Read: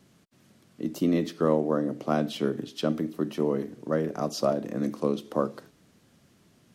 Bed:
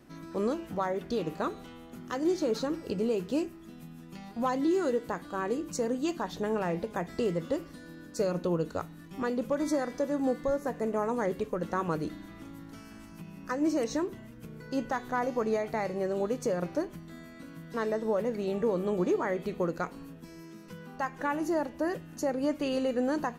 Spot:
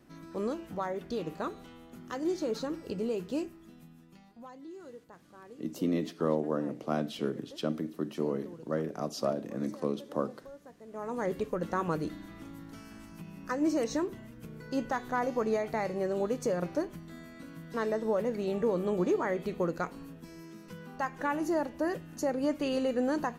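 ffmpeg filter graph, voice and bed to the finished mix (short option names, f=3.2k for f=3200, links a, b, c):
-filter_complex "[0:a]adelay=4800,volume=-5.5dB[a];[1:a]volume=15.5dB,afade=t=out:st=3.47:d=0.99:silence=0.158489,afade=t=in:st=10.87:d=0.47:silence=0.112202[b];[a][b]amix=inputs=2:normalize=0"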